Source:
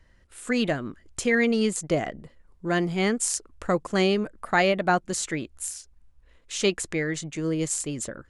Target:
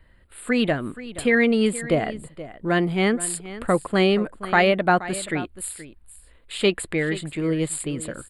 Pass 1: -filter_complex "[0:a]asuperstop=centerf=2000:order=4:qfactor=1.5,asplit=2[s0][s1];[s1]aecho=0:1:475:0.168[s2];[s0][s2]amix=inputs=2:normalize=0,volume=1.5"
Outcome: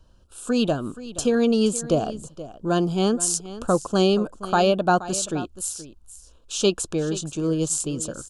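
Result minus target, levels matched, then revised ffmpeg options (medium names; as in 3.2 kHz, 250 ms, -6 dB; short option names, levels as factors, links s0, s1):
2 kHz band -9.5 dB
-filter_complex "[0:a]asuperstop=centerf=6000:order=4:qfactor=1.5,asplit=2[s0][s1];[s1]aecho=0:1:475:0.168[s2];[s0][s2]amix=inputs=2:normalize=0,volume=1.5"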